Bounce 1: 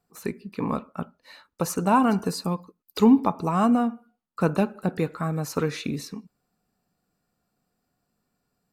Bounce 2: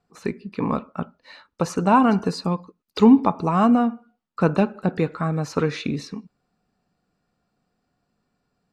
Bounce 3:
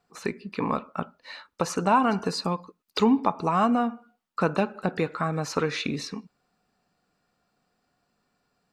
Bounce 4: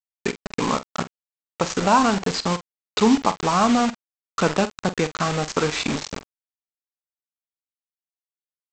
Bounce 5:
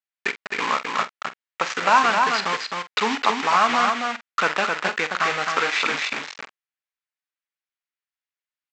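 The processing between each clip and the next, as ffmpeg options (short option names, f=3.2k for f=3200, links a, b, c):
-af "lowpass=5.1k,volume=3.5dB"
-af "lowshelf=f=400:g=-9,acompressor=threshold=-31dB:ratio=1.5,volume=4dB"
-filter_complex "[0:a]aresample=16000,acrusher=bits=4:mix=0:aa=0.000001,aresample=44100,asplit=2[a][b];[b]adelay=46,volume=-13.5dB[c];[a][c]amix=inputs=2:normalize=0,volume=3.5dB"
-af "bandpass=f=1.9k:t=q:w=1.3:csg=0,aecho=1:1:262:0.631,volume=7.5dB"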